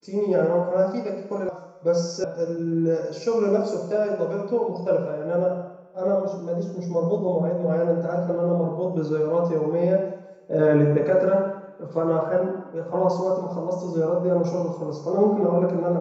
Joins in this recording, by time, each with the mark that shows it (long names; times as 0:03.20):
0:01.49: cut off before it has died away
0:02.24: cut off before it has died away